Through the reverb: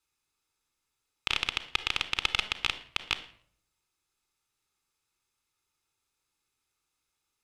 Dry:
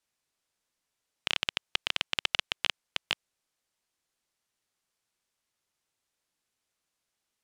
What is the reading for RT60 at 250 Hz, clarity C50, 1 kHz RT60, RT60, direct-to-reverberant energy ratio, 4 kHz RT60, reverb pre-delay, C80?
0.75 s, 13.0 dB, 0.55 s, 0.60 s, 8.5 dB, 0.45 s, 3 ms, 16.5 dB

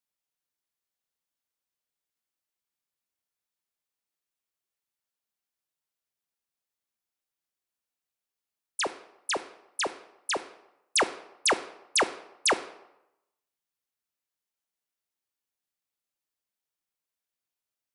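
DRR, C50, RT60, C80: 11.5 dB, 14.5 dB, 0.90 s, 17.0 dB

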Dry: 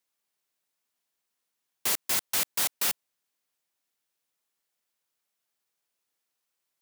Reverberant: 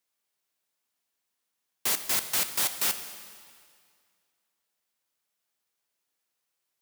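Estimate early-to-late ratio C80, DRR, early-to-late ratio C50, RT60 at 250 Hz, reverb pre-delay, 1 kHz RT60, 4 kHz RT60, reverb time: 11.0 dB, 8.5 dB, 10.0 dB, 2.2 s, 6 ms, 2.1 s, 2.0 s, 2.1 s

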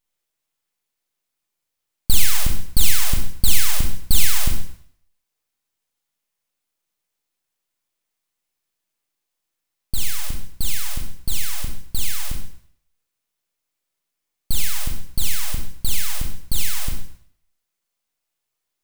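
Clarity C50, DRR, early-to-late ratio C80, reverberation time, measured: 4.5 dB, 0.5 dB, 8.0 dB, 0.60 s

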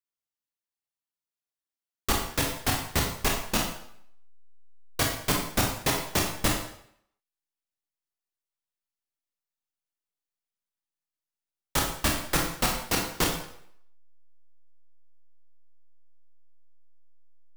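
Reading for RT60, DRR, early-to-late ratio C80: 0.65 s, 0.0 dB, 7.5 dB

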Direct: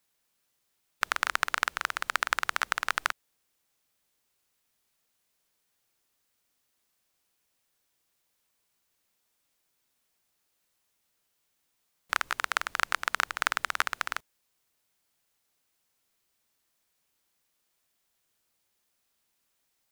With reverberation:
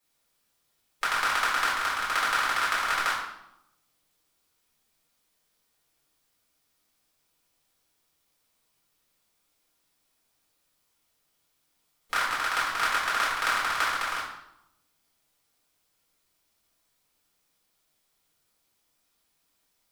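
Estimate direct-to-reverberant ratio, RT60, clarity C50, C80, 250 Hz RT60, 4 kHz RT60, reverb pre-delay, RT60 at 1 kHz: −9.0 dB, 0.85 s, 2.5 dB, 5.5 dB, 1.1 s, 0.65 s, 3 ms, 0.80 s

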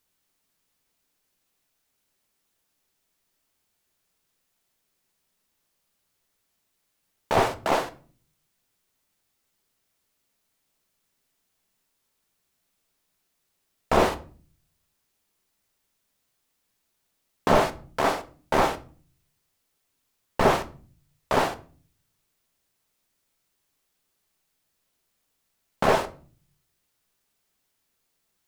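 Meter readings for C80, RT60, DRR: 22.5 dB, 0.45 s, 9.0 dB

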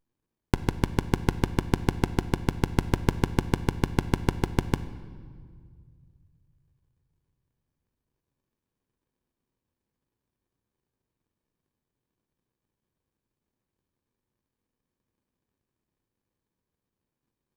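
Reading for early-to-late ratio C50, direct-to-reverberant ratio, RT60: 13.5 dB, 11.0 dB, 2.0 s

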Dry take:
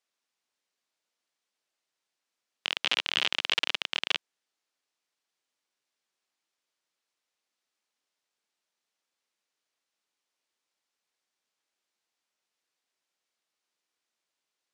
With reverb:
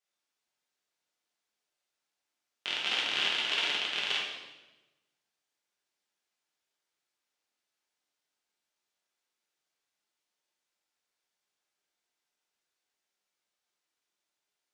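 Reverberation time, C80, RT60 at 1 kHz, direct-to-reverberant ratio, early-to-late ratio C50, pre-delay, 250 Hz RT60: 1.1 s, 4.5 dB, 1.0 s, −5.5 dB, 1.5 dB, 4 ms, 1.3 s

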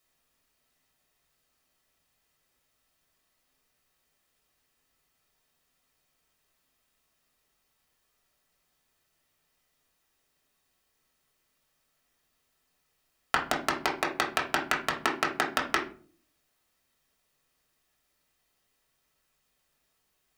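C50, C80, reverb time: 9.5 dB, 14.0 dB, 0.45 s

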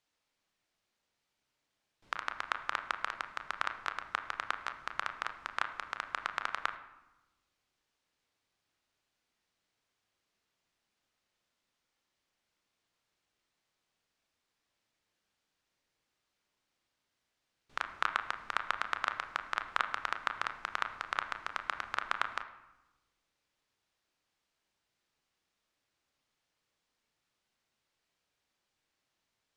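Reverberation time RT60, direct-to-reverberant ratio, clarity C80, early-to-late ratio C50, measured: 1.0 s, 6.0 dB, 13.0 dB, 11.0 dB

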